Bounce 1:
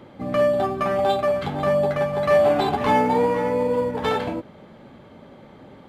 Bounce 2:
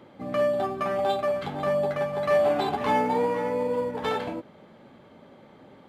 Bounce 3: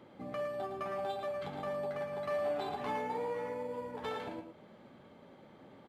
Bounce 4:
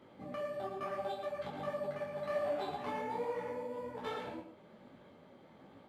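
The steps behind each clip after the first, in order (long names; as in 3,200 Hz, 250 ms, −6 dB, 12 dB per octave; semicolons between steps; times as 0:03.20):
low-shelf EQ 97 Hz −10 dB; level −4.5 dB
downward compressor 1.5 to 1, threshold −40 dBFS, peak gain reduction 8 dB; single-tap delay 111 ms −7.5 dB; level −6 dB
micro pitch shift up and down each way 42 cents; level +2 dB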